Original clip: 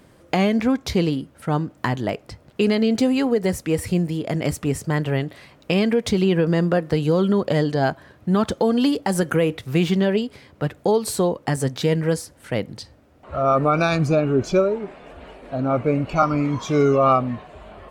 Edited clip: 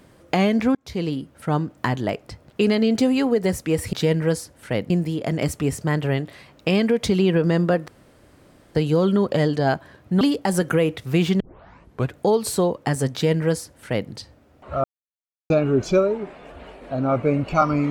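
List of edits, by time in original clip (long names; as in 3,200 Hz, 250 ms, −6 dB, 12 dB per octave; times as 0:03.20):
0:00.75–0:01.49: fade in equal-power
0:06.91: splice in room tone 0.87 s
0:08.37–0:08.82: remove
0:10.01: tape start 0.73 s
0:11.74–0:12.71: duplicate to 0:03.93
0:13.45–0:14.11: silence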